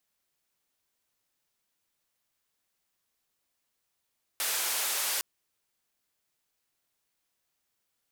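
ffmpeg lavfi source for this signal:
ffmpeg -f lavfi -i "anoisesrc=color=white:duration=0.81:sample_rate=44100:seed=1,highpass=frequency=580,lowpass=frequency=15000,volume=-23.8dB" out.wav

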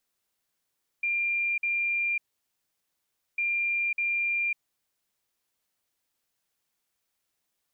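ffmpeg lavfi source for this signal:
ffmpeg -f lavfi -i "aevalsrc='0.0596*sin(2*PI*2390*t)*clip(min(mod(mod(t,2.35),0.6),0.55-mod(mod(t,2.35),0.6))/0.005,0,1)*lt(mod(t,2.35),1.2)':duration=4.7:sample_rate=44100" out.wav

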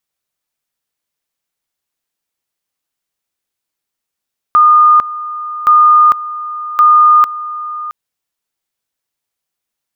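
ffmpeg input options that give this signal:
ffmpeg -f lavfi -i "aevalsrc='pow(10,(-3.5-16*gte(mod(t,1.12),0.45))/20)*sin(2*PI*1220*t)':duration=3.36:sample_rate=44100" out.wav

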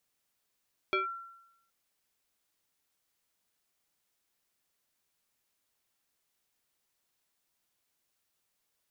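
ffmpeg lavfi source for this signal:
ffmpeg -f lavfi -i "aevalsrc='0.0631*pow(10,-3*t/0.87)*sin(2*PI*1360*t+1.6*clip(1-t/0.14,0,1)*sin(2*PI*0.72*1360*t))':duration=0.77:sample_rate=44100" out.wav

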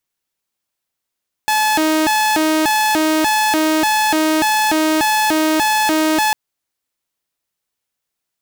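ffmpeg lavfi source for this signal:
ffmpeg -f lavfi -i "aevalsrc='0.299*(2*mod((586.5*t+273.5/1.7*(0.5-abs(mod(1.7*t,1)-0.5))),1)-1)':duration=4.85:sample_rate=44100" out.wav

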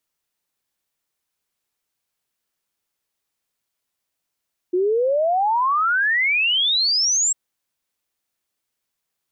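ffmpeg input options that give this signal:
ffmpeg -f lavfi -i "aevalsrc='0.158*clip(min(t,2.6-t)/0.01,0,1)*sin(2*PI*350*2.6/log(7700/350)*(exp(log(7700/350)*t/2.6)-1))':duration=2.6:sample_rate=44100" out.wav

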